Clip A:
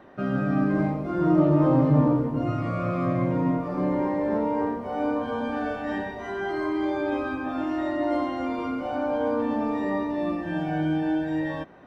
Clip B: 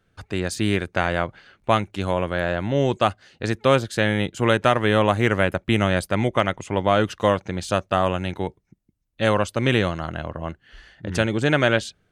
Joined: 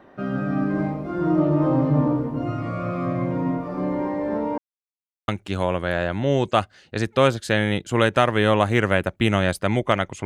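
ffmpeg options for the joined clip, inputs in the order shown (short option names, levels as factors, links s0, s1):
-filter_complex "[0:a]apad=whole_dur=10.25,atrim=end=10.25,asplit=2[s0][s1];[s0]atrim=end=4.58,asetpts=PTS-STARTPTS,afade=t=out:st=4.576:d=0.004:c=hsin[s2];[s1]atrim=start=4.58:end=5.28,asetpts=PTS-STARTPTS,volume=0[s3];[1:a]atrim=start=1.76:end=6.73,asetpts=PTS-STARTPTS,afade=t=in:d=0.004:c=hsin[s4];[s2][s3][s4]concat=n=3:v=0:a=1"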